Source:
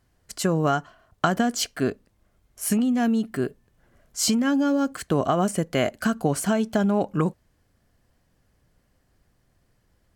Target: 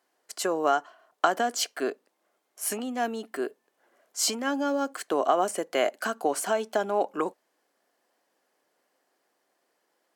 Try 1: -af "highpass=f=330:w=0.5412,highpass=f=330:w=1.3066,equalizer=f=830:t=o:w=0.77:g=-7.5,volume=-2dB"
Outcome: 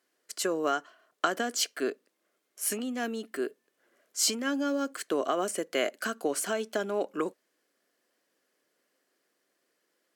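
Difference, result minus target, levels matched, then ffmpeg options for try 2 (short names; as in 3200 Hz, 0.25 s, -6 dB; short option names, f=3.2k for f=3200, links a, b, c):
1000 Hz band -4.5 dB
-af "highpass=f=330:w=0.5412,highpass=f=330:w=1.3066,equalizer=f=830:t=o:w=0.77:g=4,volume=-2dB"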